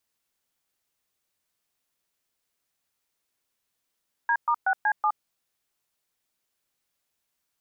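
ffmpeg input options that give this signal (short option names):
-f lavfi -i "aevalsrc='0.075*clip(min(mod(t,0.187),0.068-mod(t,0.187))/0.002,0,1)*(eq(floor(t/0.187),0)*(sin(2*PI*941*mod(t,0.187))+sin(2*PI*1633*mod(t,0.187)))+eq(floor(t/0.187),1)*(sin(2*PI*941*mod(t,0.187))+sin(2*PI*1209*mod(t,0.187)))+eq(floor(t/0.187),2)*(sin(2*PI*770*mod(t,0.187))+sin(2*PI*1477*mod(t,0.187)))+eq(floor(t/0.187),3)*(sin(2*PI*852*mod(t,0.187))+sin(2*PI*1633*mod(t,0.187)))+eq(floor(t/0.187),4)*(sin(2*PI*852*mod(t,0.187))+sin(2*PI*1209*mod(t,0.187))))':d=0.935:s=44100"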